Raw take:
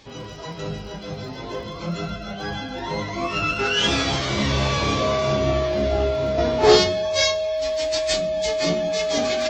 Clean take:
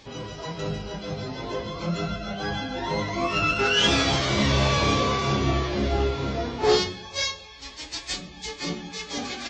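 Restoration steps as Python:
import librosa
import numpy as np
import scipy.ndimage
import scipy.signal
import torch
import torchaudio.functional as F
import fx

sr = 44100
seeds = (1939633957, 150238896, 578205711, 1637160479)

y = fx.fix_declick_ar(x, sr, threshold=6.5)
y = fx.notch(y, sr, hz=630.0, q=30.0)
y = fx.gain(y, sr, db=fx.steps((0.0, 0.0), (6.38, -6.0)))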